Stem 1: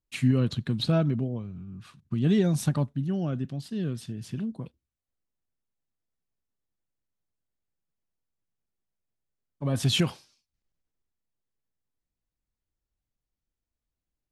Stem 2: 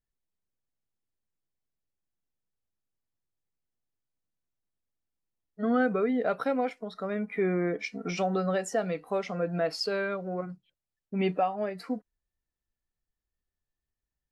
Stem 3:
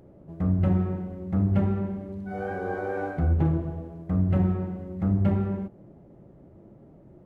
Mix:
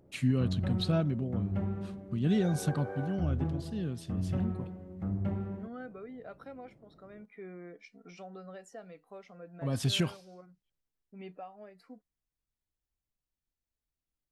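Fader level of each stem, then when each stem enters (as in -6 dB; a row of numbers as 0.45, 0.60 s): -5.0, -18.5, -10.0 dB; 0.00, 0.00, 0.00 s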